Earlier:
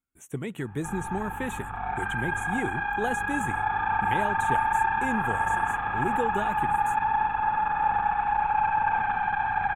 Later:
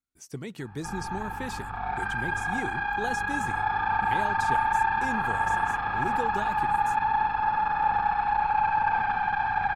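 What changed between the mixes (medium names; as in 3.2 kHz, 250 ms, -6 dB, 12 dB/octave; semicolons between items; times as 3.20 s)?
speech -4.0 dB; master: remove Butterworth band-stop 4.9 kHz, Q 1.3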